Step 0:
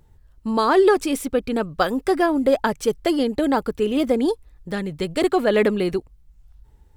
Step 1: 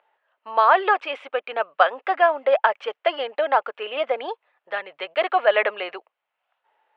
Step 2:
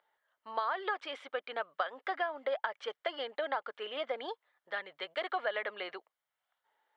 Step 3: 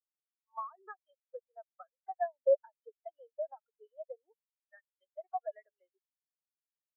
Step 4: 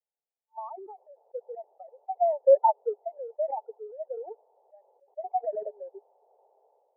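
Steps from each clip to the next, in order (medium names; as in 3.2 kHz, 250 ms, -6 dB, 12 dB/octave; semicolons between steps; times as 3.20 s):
Chebyshev band-pass 610–2900 Hz, order 3; trim +5 dB
peaking EQ 680 Hz -11.5 dB 2.9 oct; compression 10:1, threshold -29 dBFS, peak gain reduction 10 dB; peaking EQ 2.6 kHz -14.5 dB 0.25 oct
spectral contrast expander 4:1
Chebyshev band-pass 410–880 Hz, order 4; decay stretcher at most 31 dB/s; trim +8 dB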